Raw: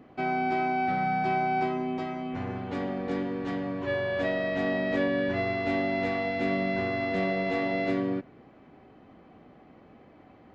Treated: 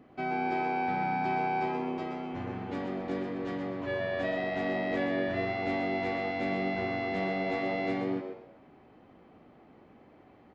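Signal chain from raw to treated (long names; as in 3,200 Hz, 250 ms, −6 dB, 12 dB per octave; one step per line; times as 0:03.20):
echo with shifted repeats 125 ms, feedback 33%, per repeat +91 Hz, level −7 dB
level −4 dB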